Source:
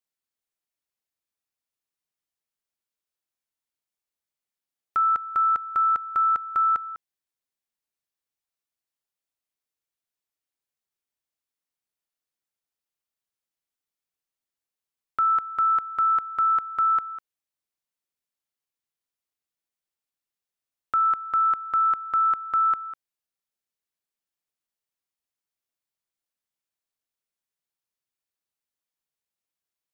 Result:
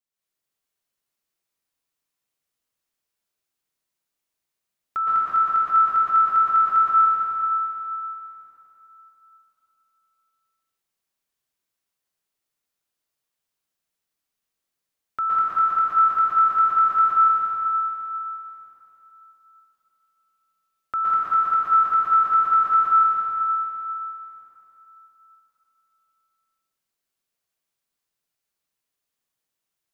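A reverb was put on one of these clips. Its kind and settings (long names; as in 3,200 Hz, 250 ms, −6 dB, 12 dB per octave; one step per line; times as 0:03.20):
dense smooth reverb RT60 3.4 s, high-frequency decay 0.9×, pre-delay 105 ms, DRR −9.5 dB
level −3 dB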